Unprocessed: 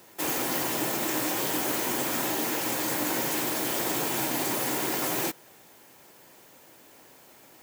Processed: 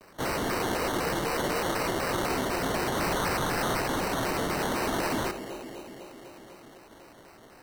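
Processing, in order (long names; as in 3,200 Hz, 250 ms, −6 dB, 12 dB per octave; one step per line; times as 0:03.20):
0:00.55–0:02.29: frequency shifter +93 Hz
0:02.95–0:03.79: high-shelf EQ 5,900 Hz +10.5 dB
wave folding −23.5 dBFS
delay with a band-pass on its return 251 ms, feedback 71%, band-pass 420 Hz, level −7 dB
decimation without filtering 15×
on a send at −12 dB: convolution reverb RT60 2.3 s, pre-delay 3 ms
on the sum: pitch modulation by a square or saw wave square 4 Hz, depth 250 cents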